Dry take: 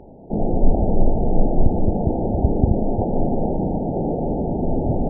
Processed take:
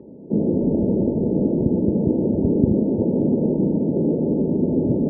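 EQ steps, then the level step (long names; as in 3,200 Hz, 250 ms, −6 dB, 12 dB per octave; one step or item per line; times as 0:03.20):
moving average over 59 samples
high-pass filter 210 Hz 12 dB per octave
+8.5 dB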